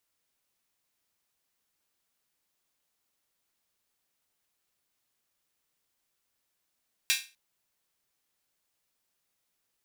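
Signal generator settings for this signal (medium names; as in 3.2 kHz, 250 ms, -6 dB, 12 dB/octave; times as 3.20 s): open hi-hat length 0.25 s, high-pass 2.4 kHz, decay 0.31 s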